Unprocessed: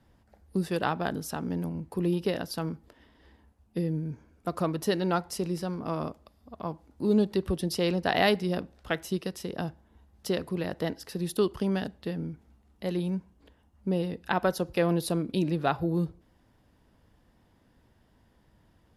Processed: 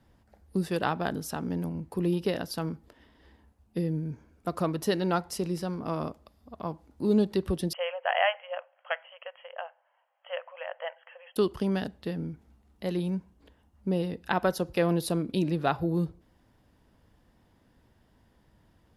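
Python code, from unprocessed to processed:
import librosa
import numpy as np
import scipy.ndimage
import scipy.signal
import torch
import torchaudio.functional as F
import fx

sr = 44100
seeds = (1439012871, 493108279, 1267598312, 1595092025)

y = fx.brickwall_bandpass(x, sr, low_hz=500.0, high_hz=3300.0, at=(7.73, 11.36))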